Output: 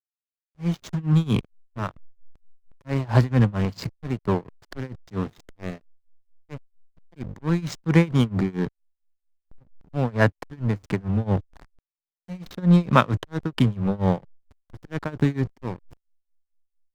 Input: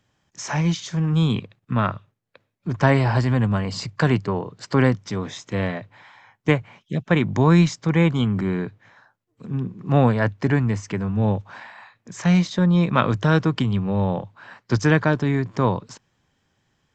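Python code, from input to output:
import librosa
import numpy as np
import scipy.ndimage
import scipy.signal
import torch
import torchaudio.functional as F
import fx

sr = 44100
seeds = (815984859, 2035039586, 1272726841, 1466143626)

y = fx.auto_swell(x, sr, attack_ms=358.0)
y = fx.backlash(y, sr, play_db=-26.0)
y = y * (1.0 - 0.94 / 2.0 + 0.94 / 2.0 * np.cos(2.0 * np.pi * 4.4 * (np.arange(len(y)) / sr)))
y = y * librosa.db_to_amplitude(4.5)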